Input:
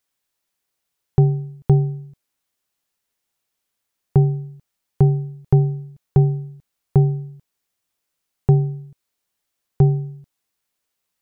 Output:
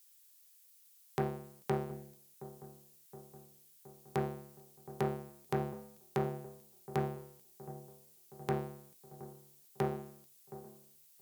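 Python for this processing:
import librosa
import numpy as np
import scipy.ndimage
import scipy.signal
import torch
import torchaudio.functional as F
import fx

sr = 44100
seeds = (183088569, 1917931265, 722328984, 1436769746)

p1 = fx.octave_divider(x, sr, octaves=1, level_db=0.0)
p2 = scipy.signal.sosfilt(scipy.signal.butter(2, 160.0, 'highpass', fs=sr, output='sos'), p1)
p3 = fx.cheby_harmonics(p2, sr, harmonics=(6,), levels_db=(-29,), full_scale_db=-5.5)
p4 = np.diff(p3, prepend=0.0)
p5 = p4 + fx.echo_wet_lowpass(p4, sr, ms=719, feedback_pct=64, hz=990.0, wet_db=-15, dry=0)
y = p5 * librosa.db_to_amplitude(12.5)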